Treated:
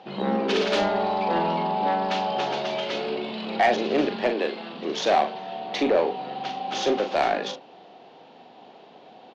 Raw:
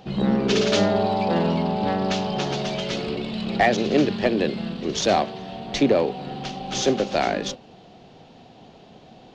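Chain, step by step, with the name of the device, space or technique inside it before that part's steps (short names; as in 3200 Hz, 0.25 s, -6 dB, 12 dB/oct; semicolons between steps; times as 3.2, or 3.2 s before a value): 4.3–4.74 HPF 310 Hz 12 dB/oct; intercom (BPF 330–3800 Hz; bell 890 Hz +4 dB 0.51 oct; soft clip -13 dBFS, distortion -17 dB; doubler 41 ms -7 dB)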